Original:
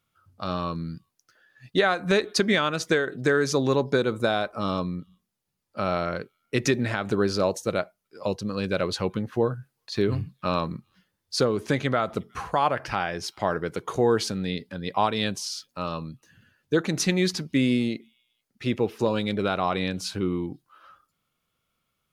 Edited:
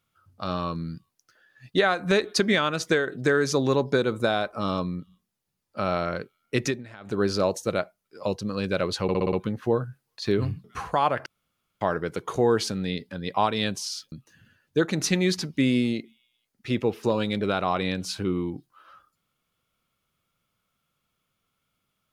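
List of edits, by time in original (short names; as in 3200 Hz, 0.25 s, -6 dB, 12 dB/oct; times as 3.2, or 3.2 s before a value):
6.59–7.24 dip -17 dB, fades 0.24 s
9.03 stutter 0.06 s, 6 plays
10.34–12.24 cut
12.86–13.41 room tone
15.72–16.08 cut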